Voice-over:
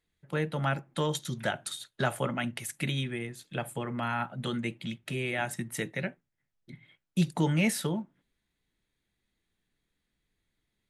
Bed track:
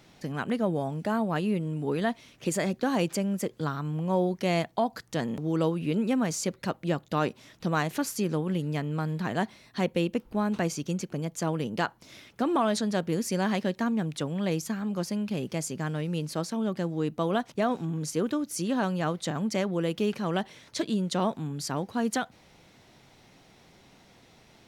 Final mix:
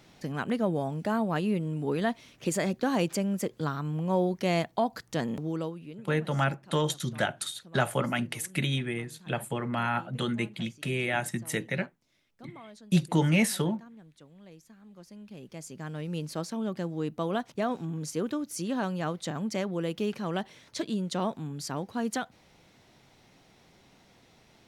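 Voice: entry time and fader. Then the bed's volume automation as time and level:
5.75 s, +2.5 dB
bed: 0:05.38 −0.5 dB
0:06.17 −23 dB
0:14.76 −23 dB
0:16.14 −3 dB

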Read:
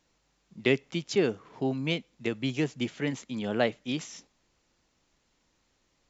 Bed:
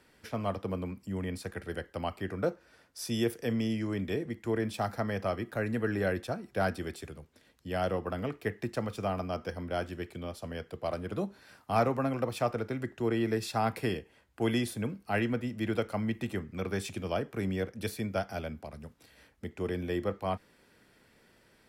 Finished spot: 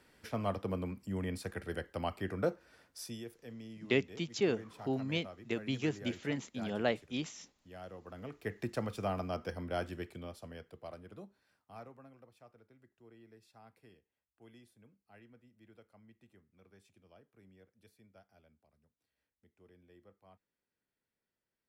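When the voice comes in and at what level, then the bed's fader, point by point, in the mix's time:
3.25 s, −5.5 dB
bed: 0:02.95 −2 dB
0:03.24 −17.5 dB
0:07.96 −17.5 dB
0:08.61 −3 dB
0:09.95 −3 dB
0:12.37 −29.5 dB

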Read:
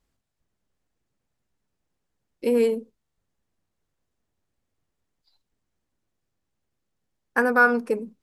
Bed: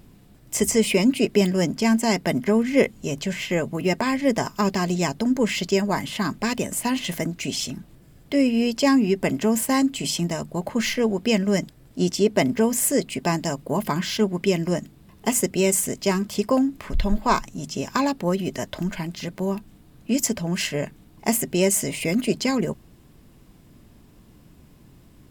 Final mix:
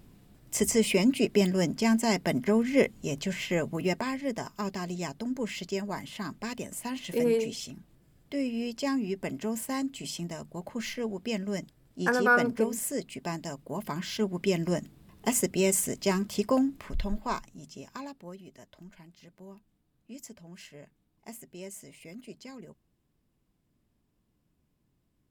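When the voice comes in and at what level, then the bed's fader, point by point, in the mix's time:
4.70 s, −5.0 dB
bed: 0:03.81 −5 dB
0:04.24 −11.5 dB
0:13.71 −11.5 dB
0:14.63 −5 dB
0:16.61 −5 dB
0:18.47 −23 dB

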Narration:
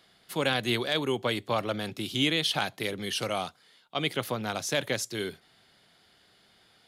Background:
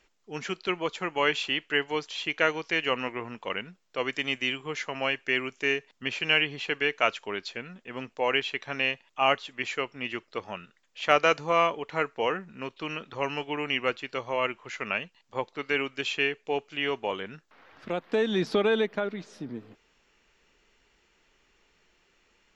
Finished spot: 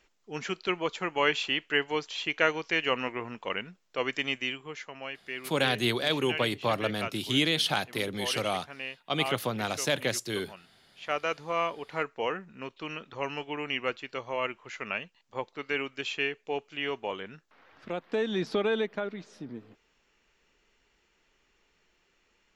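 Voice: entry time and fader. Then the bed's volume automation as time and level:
5.15 s, +0.5 dB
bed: 0:04.23 −0.5 dB
0:05.04 −11 dB
0:10.90 −11 dB
0:11.95 −3.5 dB

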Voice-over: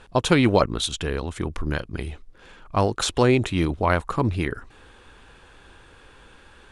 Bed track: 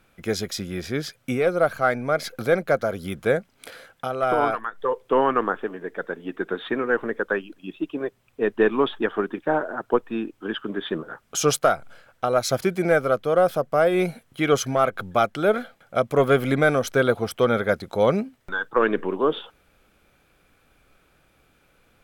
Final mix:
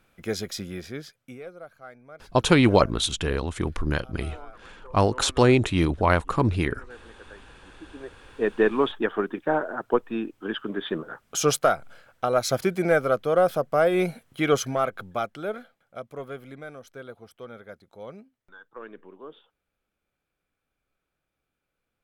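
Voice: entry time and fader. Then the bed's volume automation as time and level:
2.20 s, +0.5 dB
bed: 0:00.68 −3.5 dB
0:01.66 −23.5 dB
0:07.60 −23.5 dB
0:08.42 −1.5 dB
0:14.50 −1.5 dB
0:16.58 −21.5 dB

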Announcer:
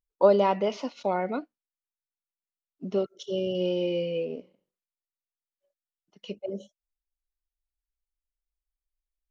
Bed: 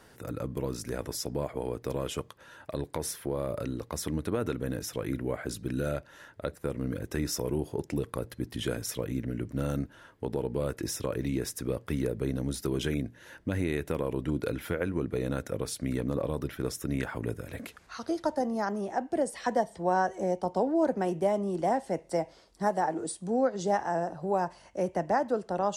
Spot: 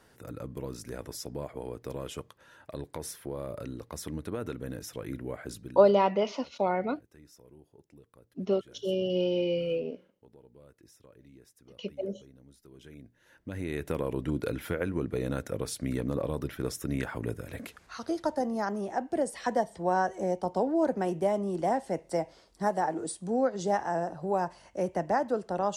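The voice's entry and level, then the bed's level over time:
5.55 s, −0.5 dB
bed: 0:05.59 −5 dB
0:05.98 −24.5 dB
0:12.65 −24.5 dB
0:13.89 −0.5 dB

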